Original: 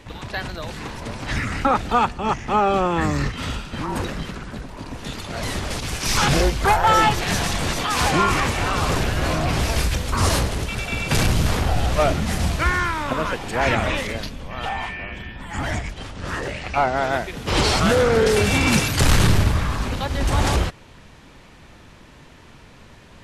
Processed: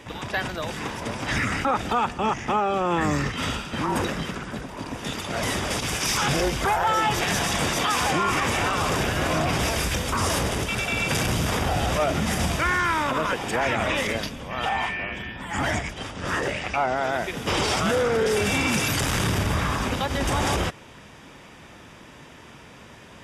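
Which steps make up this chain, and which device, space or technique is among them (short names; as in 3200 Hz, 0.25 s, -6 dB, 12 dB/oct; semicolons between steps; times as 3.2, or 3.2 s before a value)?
PA system with an anti-feedback notch (HPF 150 Hz 6 dB/oct; Butterworth band-stop 4200 Hz, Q 8; limiter -17 dBFS, peak gain reduction 9.5 dB); gain +2.5 dB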